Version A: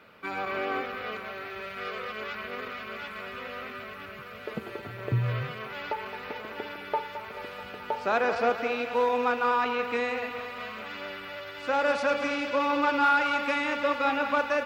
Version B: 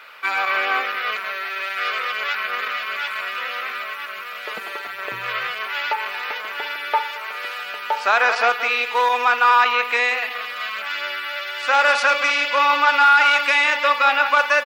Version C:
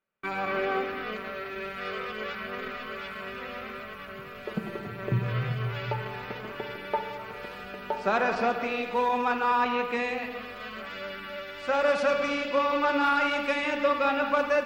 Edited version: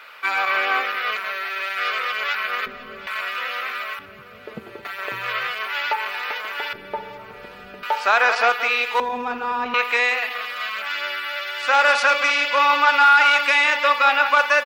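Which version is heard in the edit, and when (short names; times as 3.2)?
B
2.66–3.07 from C
3.99–4.85 from A
6.73–7.83 from C
9–9.74 from C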